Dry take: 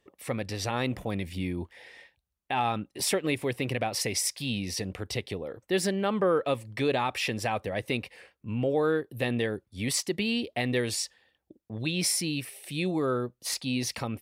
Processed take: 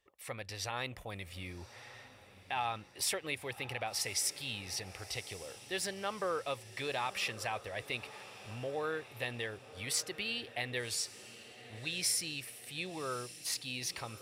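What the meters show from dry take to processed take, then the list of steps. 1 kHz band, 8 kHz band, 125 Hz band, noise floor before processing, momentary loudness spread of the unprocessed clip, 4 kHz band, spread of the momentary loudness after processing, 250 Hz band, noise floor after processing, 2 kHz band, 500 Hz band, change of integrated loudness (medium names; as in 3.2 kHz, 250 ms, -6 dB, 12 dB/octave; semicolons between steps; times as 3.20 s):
-7.0 dB, -4.5 dB, -13.0 dB, -80 dBFS, 8 LU, -4.5 dB, 12 LU, -17.5 dB, -57 dBFS, -5.0 dB, -11.5 dB, -7.5 dB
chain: peaking EQ 230 Hz -14.5 dB 2.1 oct; echo that smears into a reverb 1155 ms, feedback 53%, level -15 dB; trim -4.5 dB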